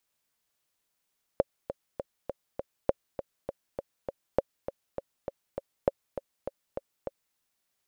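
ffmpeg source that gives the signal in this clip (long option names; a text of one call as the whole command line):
ffmpeg -f lavfi -i "aevalsrc='pow(10,(-9-11*gte(mod(t,5*60/201),60/201))/20)*sin(2*PI*552*mod(t,60/201))*exp(-6.91*mod(t,60/201)/0.03)':duration=5.97:sample_rate=44100" out.wav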